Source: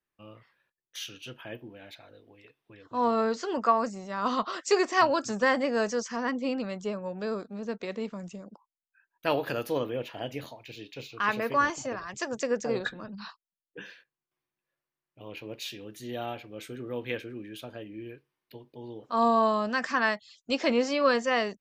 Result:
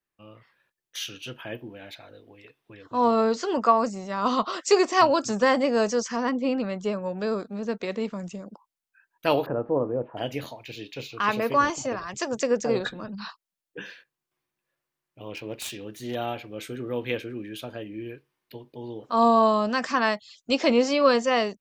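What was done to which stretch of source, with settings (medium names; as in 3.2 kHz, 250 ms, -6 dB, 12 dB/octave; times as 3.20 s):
6.29–6.84 s: treble shelf 4.3 kHz -9 dB
9.46–10.17 s: low-pass 1.1 kHz 24 dB/octave
15.34–16.15 s: self-modulated delay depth 0.1 ms
whole clip: dynamic bell 1.7 kHz, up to -6 dB, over -43 dBFS, Q 2.3; level rider gain up to 5 dB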